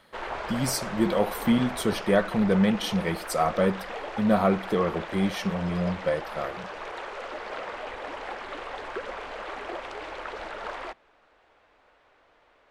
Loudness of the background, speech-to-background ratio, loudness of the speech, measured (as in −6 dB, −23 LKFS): −36.5 LKFS, 10.5 dB, −26.0 LKFS